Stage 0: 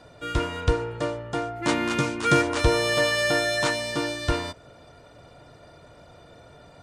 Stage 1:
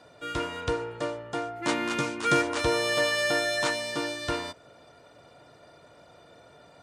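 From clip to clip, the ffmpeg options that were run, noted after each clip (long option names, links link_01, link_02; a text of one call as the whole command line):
ffmpeg -i in.wav -af "highpass=frequency=230:poles=1,volume=-2.5dB" out.wav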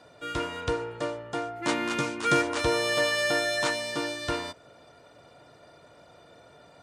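ffmpeg -i in.wav -af anull out.wav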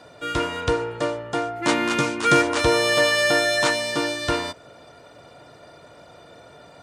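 ffmpeg -i in.wav -af "acontrast=76" out.wav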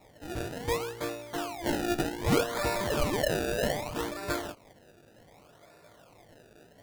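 ffmpeg -i in.wav -af "flanger=delay=18:depth=2.3:speed=0.32,acrusher=samples=28:mix=1:aa=0.000001:lfo=1:lforange=28:lforate=0.65,volume=-6.5dB" out.wav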